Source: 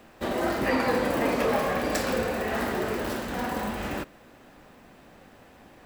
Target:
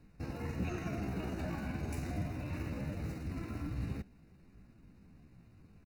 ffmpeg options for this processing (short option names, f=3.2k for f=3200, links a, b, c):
-af "asuperstop=centerf=2400:order=8:qfactor=4.5,asetrate=60591,aresample=44100,atempo=0.727827,firequalizer=gain_entry='entry(190,0);entry(350,-18);entry(940,-27);entry(1400,-21)':delay=0.05:min_phase=1,volume=2.5dB"